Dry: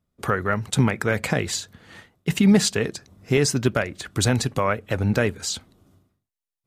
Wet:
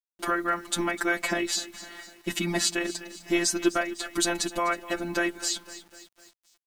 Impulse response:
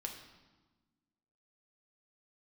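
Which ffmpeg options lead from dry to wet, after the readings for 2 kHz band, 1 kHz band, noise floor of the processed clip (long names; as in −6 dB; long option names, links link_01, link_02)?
−1.5 dB, −1.5 dB, below −85 dBFS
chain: -filter_complex "[0:a]afftfilt=real='hypot(re,im)*cos(PI*b)':imag='0':win_size=1024:overlap=0.75,agate=range=-33dB:threshold=-53dB:ratio=3:detection=peak,aecho=1:1:252|504|756|1008:0.126|0.0617|0.0302|0.0148,asplit=2[link_01][link_02];[link_02]acompressor=threshold=-32dB:ratio=6,volume=-2.5dB[link_03];[link_01][link_03]amix=inputs=2:normalize=0,aecho=1:1:3.1:0.87,acrusher=bits=8:mix=0:aa=0.000001,equalizer=frequency=130:width_type=o:width=0.26:gain=-14,volume=-2.5dB"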